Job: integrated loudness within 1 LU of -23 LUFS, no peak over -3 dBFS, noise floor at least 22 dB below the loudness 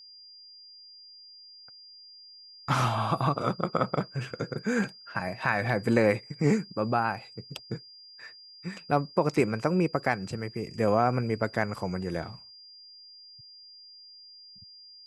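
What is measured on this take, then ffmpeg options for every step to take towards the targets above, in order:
steady tone 4800 Hz; tone level -48 dBFS; loudness -28.5 LUFS; peak -9.0 dBFS; loudness target -23.0 LUFS
-> -af "bandreject=f=4.8k:w=30"
-af "volume=5.5dB"

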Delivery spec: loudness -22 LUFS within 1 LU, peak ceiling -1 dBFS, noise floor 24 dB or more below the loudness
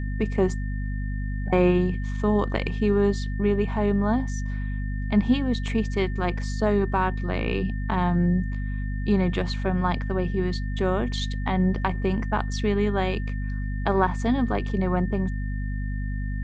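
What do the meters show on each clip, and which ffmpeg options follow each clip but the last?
hum 50 Hz; harmonics up to 250 Hz; hum level -26 dBFS; steady tone 1800 Hz; tone level -42 dBFS; loudness -25.5 LUFS; peak -6.5 dBFS; loudness target -22.0 LUFS
-> -af "bandreject=f=50:t=h:w=4,bandreject=f=100:t=h:w=4,bandreject=f=150:t=h:w=4,bandreject=f=200:t=h:w=4,bandreject=f=250:t=h:w=4"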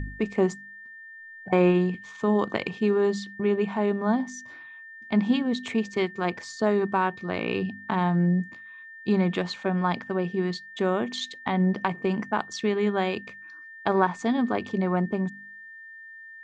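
hum none; steady tone 1800 Hz; tone level -42 dBFS
-> -af "bandreject=f=1.8k:w=30"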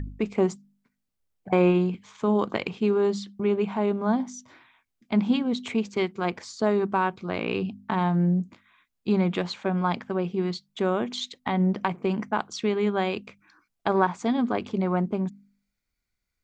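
steady tone none; loudness -26.5 LUFS; peak -8.0 dBFS; loudness target -22.0 LUFS
-> -af "volume=4.5dB"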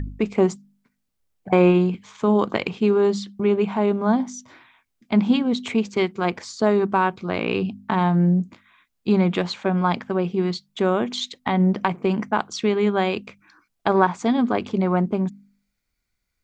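loudness -22.0 LUFS; peak -3.5 dBFS; noise floor -76 dBFS

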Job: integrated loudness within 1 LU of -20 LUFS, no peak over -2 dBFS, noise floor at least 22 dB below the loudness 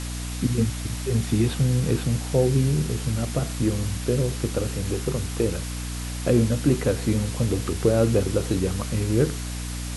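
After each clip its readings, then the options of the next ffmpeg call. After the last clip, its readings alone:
hum 60 Hz; harmonics up to 300 Hz; hum level -29 dBFS; noise floor -31 dBFS; noise floor target -47 dBFS; loudness -24.5 LUFS; peak -6.5 dBFS; loudness target -20.0 LUFS
-> -af "bandreject=f=60:t=h:w=6,bandreject=f=120:t=h:w=6,bandreject=f=180:t=h:w=6,bandreject=f=240:t=h:w=6,bandreject=f=300:t=h:w=6"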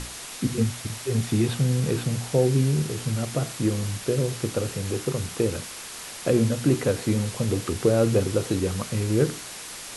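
hum none; noise floor -39 dBFS; noise floor target -47 dBFS
-> -af "afftdn=nr=8:nf=-39"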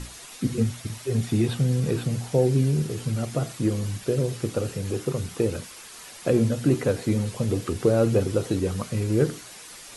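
noise floor -44 dBFS; noise floor target -48 dBFS
-> -af "afftdn=nr=6:nf=-44"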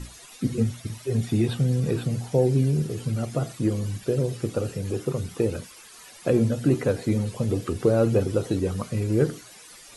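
noise floor -47 dBFS; noise floor target -48 dBFS
-> -af "afftdn=nr=6:nf=-47"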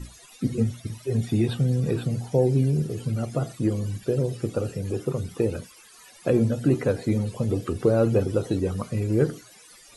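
noise floor -51 dBFS; loudness -25.5 LUFS; peak -8.5 dBFS; loudness target -20.0 LUFS
-> -af "volume=5.5dB"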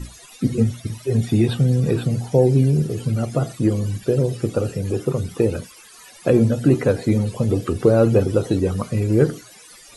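loudness -20.0 LUFS; peak -3.0 dBFS; noise floor -45 dBFS

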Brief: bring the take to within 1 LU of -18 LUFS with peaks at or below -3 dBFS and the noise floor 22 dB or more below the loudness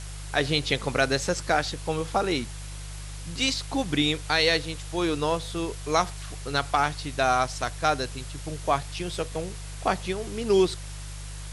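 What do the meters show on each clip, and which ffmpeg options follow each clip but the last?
hum 50 Hz; harmonics up to 150 Hz; hum level -35 dBFS; noise floor -37 dBFS; noise floor target -49 dBFS; loudness -26.5 LUFS; peak -8.0 dBFS; loudness target -18.0 LUFS
-> -af "bandreject=f=50:t=h:w=4,bandreject=f=100:t=h:w=4,bandreject=f=150:t=h:w=4"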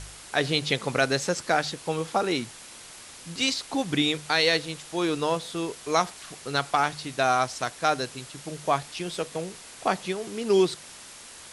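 hum none; noise floor -46 dBFS; noise floor target -49 dBFS
-> -af "afftdn=nr=6:nf=-46"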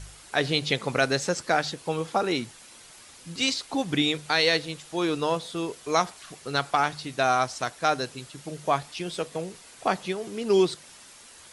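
noise floor -50 dBFS; loudness -26.5 LUFS; peak -8.5 dBFS; loudness target -18.0 LUFS
-> -af "volume=8.5dB,alimiter=limit=-3dB:level=0:latency=1"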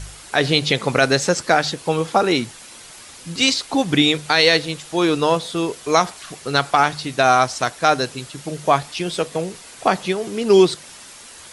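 loudness -18.5 LUFS; peak -3.0 dBFS; noise floor -41 dBFS

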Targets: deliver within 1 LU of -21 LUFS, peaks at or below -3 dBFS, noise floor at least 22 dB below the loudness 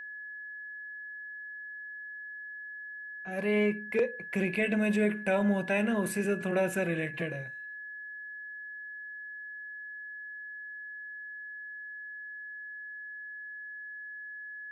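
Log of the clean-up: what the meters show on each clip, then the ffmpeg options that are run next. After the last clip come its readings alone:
steady tone 1700 Hz; tone level -40 dBFS; loudness -34.0 LUFS; peak -16.5 dBFS; loudness target -21.0 LUFS
-> -af "bandreject=f=1.7k:w=30"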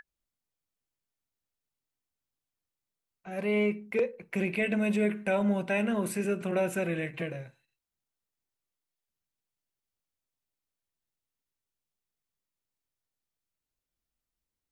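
steady tone none; loudness -30.0 LUFS; peak -17.0 dBFS; loudness target -21.0 LUFS
-> -af "volume=9dB"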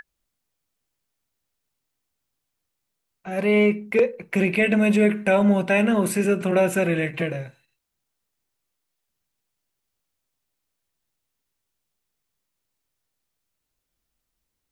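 loudness -21.0 LUFS; peak -8.0 dBFS; noise floor -80 dBFS

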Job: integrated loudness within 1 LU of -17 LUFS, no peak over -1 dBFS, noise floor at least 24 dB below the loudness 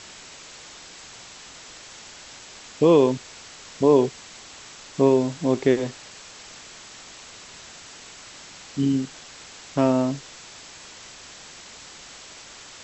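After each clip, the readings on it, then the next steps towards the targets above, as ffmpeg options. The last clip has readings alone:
noise floor -44 dBFS; noise floor target -46 dBFS; loudness -22.0 LUFS; peak -6.5 dBFS; loudness target -17.0 LUFS
-> -af "afftdn=nr=6:nf=-44"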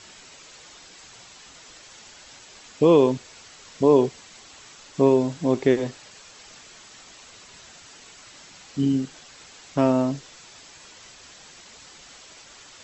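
noise floor -48 dBFS; loudness -22.0 LUFS; peak -6.5 dBFS; loudness target -17.0 LUFS
-> -af "volume=5dB"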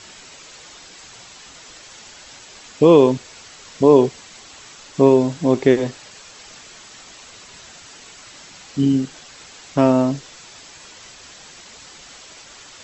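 loudness -17.0 LUFS; peak -1.5 dBFS; noise floor -43 dBFS

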